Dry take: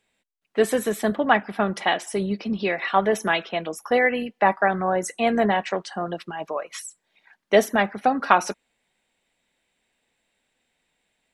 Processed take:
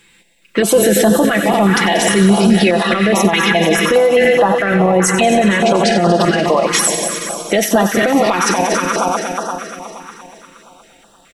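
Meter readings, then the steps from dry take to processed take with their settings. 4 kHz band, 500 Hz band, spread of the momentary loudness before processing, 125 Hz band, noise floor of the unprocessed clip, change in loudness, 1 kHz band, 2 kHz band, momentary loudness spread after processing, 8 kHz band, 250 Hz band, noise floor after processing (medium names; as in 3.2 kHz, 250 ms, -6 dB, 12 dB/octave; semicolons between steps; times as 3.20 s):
+14.0 dB, +11.0 dB, 11 LU, +16.5 dB, -75 dBFS, +10.0 dB, +7.0 dB, +9.0 dB, 8 LU, +18.5 dB, +14.0 dB, -50 dBFS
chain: backward echo that repeats 118 ms, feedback 79%, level -10.5 dB; in parallel at -11.5 dB: saturation -12 dBFS, distortion -14 dB; on the sum: compression 4:1, threshold -23 dBFS, peak gain reduction 12 dB; comb 5.9 ms, depth 52%; on a send: feedback echo behind a high-pass 92 ms, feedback 76%, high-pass 1.4 kHz, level -11 dB; on the sum: loudness maximiser +21 dB; step-sequenced notch 4.8 Hz 640–2200 Hz; trim -1 dB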